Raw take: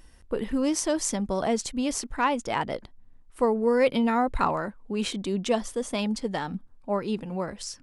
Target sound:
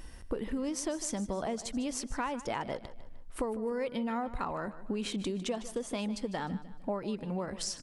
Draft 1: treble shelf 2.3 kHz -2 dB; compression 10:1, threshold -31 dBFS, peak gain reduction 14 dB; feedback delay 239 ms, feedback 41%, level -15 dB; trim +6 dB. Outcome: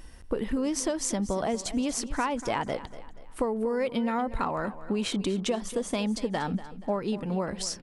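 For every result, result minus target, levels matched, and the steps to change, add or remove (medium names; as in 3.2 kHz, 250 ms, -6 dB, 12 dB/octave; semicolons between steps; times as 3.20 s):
echo 87 ms late; compression: peak gain reduction -6 dB
change: feedback delay 152 ms, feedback 41%, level -15 dB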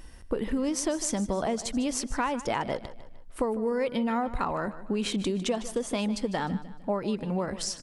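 compression: peak gain reduction -6 dB
change: compression 10:1, threshold -37.5 dBFS, peak gain reduction 20 dB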